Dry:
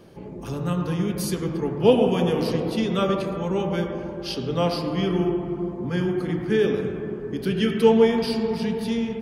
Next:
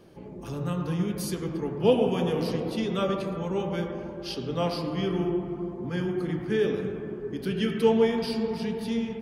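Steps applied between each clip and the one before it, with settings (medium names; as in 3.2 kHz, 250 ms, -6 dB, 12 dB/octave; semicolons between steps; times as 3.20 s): flange 0.69 Hz, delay 2.3 ms, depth 5.6 ms, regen +84%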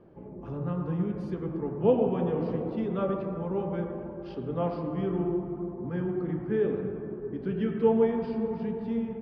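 low-pass 1.3 kHz 12 dB/octave; trim -1.5 dB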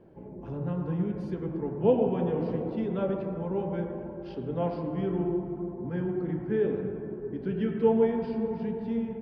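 band-stop 1.2 kHz, Q 7.4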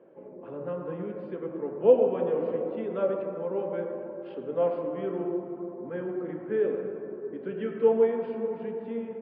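cabinet simulation 310–3100 Hz, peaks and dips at 530 Hz +8 dB, 850 Hz -4 dB, 1.2 kHz +5 dB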